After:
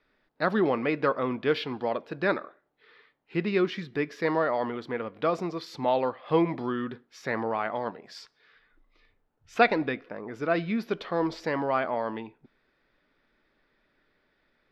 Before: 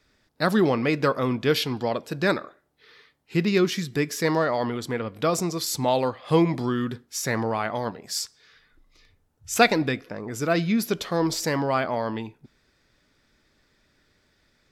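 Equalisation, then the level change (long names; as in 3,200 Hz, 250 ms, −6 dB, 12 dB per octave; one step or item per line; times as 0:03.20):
high-frequency loss of the air 340 metres
parametric band 77 Hz −15 dB 2.4 octaves
0.0 dB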